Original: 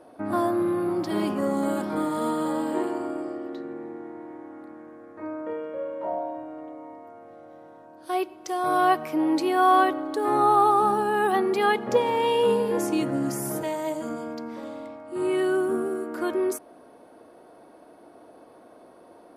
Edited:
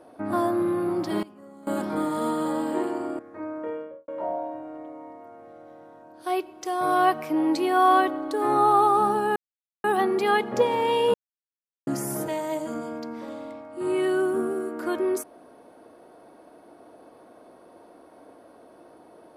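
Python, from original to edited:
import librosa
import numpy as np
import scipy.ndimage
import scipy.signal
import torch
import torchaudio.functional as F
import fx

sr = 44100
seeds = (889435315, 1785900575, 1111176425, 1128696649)

y = fx.studio_fade_out(x, sr, start_s=5.56, length_s=0.35)
y = fx.edit(y, sr, fx.fade_down_up(start_s=1.11, length_s=0.68, db=-21.5, fade_s=0.12, curve='log'),
    fx.cut(start_s=3.19, length_s=1.83),
    fx.insert_silence(at_s=11.19, length_s=0.48),
    fx.silence(start_s=12.49, length_s=0.73), tone=tone)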